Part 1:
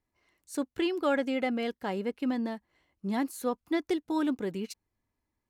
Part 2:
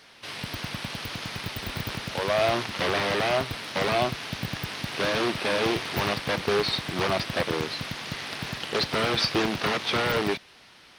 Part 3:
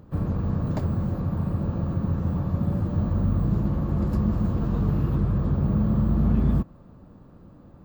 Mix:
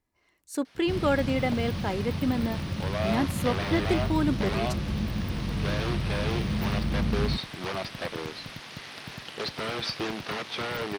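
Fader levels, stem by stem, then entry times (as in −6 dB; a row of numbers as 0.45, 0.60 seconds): +2.5, −7.0, −6.5 decibels; 0.00, 0.65, 0.75 seconds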